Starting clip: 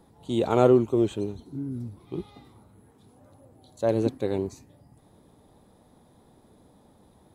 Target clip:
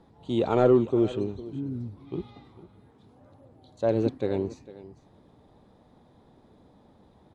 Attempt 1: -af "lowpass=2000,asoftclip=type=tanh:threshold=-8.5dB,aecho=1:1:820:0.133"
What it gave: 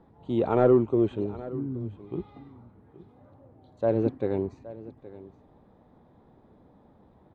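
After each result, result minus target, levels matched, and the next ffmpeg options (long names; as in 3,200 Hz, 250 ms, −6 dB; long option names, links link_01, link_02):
echo 368 ms late; 4,000 Hz band −8.5 dB
-af "lowpass=2000,asoftclip=type=tanh:threshold=-8.5dB,aecho=1:1:452:0.133"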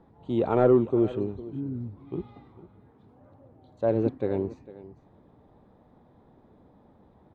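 4,000 Hz band −8.5 dB
-af "lowpass=4600,asoftclip=type=tanh:threshold=-8.5dB,aecho=1:1:452:0.133"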